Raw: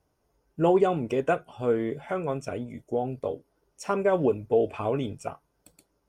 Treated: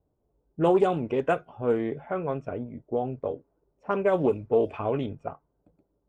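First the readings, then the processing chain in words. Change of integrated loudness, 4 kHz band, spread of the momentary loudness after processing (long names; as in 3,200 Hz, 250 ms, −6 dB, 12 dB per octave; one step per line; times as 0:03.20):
0.0 dB, can't be measured, 14 LU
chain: low-pass that shuts in the quiet parts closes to 600 Hz, open at −18 dBFS
highs frequency-modulated by the lows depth 0.13 ms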